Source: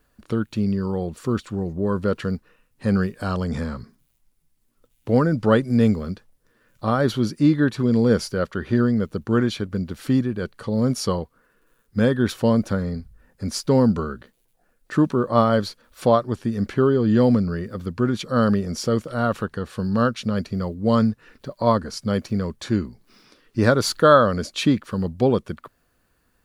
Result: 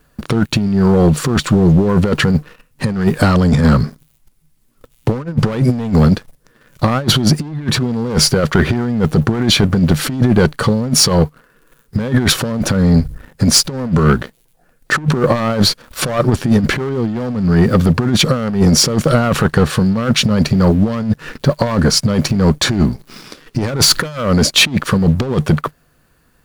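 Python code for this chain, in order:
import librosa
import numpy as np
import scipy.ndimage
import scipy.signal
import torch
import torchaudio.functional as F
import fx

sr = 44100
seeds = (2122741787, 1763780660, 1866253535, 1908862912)

p1 = fx.fold_sine(x, sr, drive_db=12, ceiling_db=-2.5)
p2 = x + F.gain(torch.from_numpy(p1), -10.5).numpy()
p3 = fx.peak_eq(p2, sr, hz=150.0, db=11.0, octaves=0.23)
p4 = fx.over_compress(p3, sr, threshold_db=-17.0, ratio=-0.5)
p5 = fx.leveller(p4, sr, passes=2)
y = F.gain(torch.from_numpy(p5), -1.0).numpy()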